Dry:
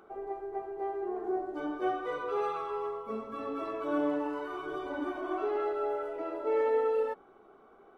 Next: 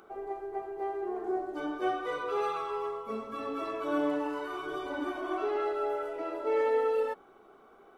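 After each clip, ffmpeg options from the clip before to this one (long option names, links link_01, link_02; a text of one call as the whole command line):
ffmpeg -i in.wav -af "highshelf=frequency=2400:gain=8.5" out.wav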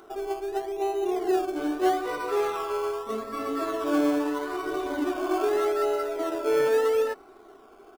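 ffmpeg -i in.wav -filter_complex "[0:a]aecho=1:1:2.9:0.5,asplit=2[link_01][link_02];[link_02]acrusher=samples=18:mix=1:aa=0.000001:lfo=1:lforange=10.8:lforate=0.8,volume=-8.5dB[link_03];[link_01][link_03]amix=inputs=2:normalize=0,volume=2.5dB" out.wav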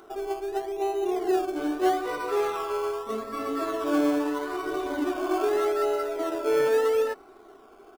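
ffmpeg -i in.wav -af anull out.wav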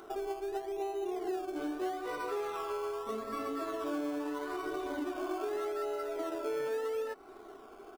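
ffmpeg -i in.wav -af "acompressor=threshold=-35dB:ratio=4" out.wav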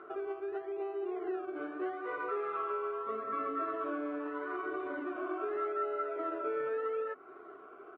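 ffmpeg -i in.wav -af "highpass=150,equalizer=frequency=230:width_type=q:width=4:gain=-8,equalizer=frequency=840:width_type=q:width=4:gain=-9,equalizer=frequency=1300:width_type=q:width=4:gain=8,lowpass=frequency=2300:width=0.5412,lowpass=frequency=2300:width=1.3066,bandreject=frequency=50:width_type=h:width=6,bandreject=frequency=100:width_type=h:width=6,bandreject=frequency=150:width_type=h:width=6,bandreject=frequency=200:width_type=h:width=6,bandreject=frequency=250:width_type=h:width=6,bandreject=frequency=300:width_type=h:width=6" out.wav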